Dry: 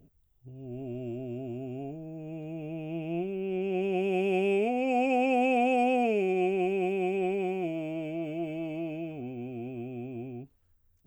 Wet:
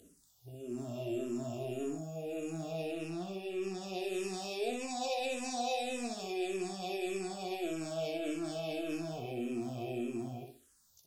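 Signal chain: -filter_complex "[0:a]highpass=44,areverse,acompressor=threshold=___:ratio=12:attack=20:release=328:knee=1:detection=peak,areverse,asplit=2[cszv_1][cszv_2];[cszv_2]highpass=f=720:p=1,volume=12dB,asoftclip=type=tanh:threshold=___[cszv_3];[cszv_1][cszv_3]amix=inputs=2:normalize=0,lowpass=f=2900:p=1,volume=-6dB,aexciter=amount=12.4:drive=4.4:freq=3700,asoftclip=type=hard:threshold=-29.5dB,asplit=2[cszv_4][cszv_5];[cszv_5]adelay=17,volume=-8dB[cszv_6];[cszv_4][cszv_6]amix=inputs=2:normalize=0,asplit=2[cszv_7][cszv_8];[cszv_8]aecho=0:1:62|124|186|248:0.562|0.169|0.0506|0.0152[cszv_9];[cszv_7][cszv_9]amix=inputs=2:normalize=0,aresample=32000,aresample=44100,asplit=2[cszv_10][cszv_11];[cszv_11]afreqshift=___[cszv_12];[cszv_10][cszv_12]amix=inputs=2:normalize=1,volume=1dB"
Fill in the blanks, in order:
-34dB, -27.5dB, -1.7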